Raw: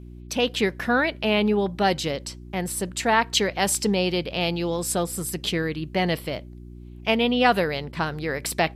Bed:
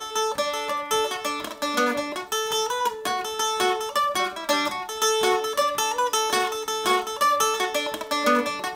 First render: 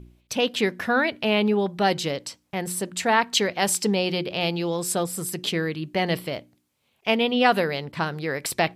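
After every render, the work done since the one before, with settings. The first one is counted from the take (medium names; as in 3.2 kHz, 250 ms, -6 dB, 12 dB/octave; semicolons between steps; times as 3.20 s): de-hum 60 Hz, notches 6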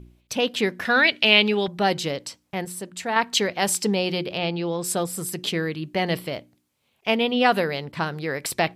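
0.85–1.68 s: frequency weighting D; 2.65–3.16 s: gain -5.5 dB; 4.38–4.84 s: distance through air 120 m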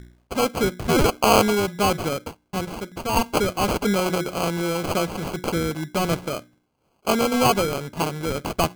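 in parallel at -11.5 dB: wavefolder -19 dBFS; on the sum: sample-and-hold 24×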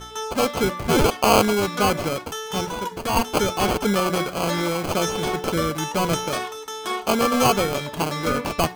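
add bed -5.5 dB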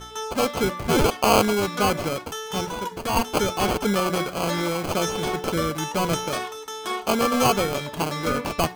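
trim -1.5 dB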